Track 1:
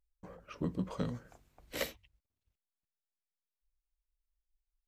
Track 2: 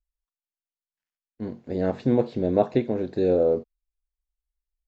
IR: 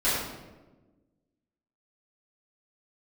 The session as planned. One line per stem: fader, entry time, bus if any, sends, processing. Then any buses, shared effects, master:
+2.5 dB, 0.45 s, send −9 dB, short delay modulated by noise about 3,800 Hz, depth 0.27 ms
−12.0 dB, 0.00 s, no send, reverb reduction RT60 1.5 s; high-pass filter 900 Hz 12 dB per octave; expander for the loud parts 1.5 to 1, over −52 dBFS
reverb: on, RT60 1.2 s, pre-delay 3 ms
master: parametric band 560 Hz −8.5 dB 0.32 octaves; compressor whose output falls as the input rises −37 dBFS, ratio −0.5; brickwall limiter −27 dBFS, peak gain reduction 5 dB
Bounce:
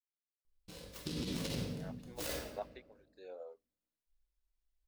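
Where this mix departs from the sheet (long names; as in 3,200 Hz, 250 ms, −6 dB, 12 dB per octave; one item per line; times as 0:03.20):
stem 1 +2.5 dB → −6.0 dB
master: missing parametric band 560 Hz −8.5 dB 0.32 octaves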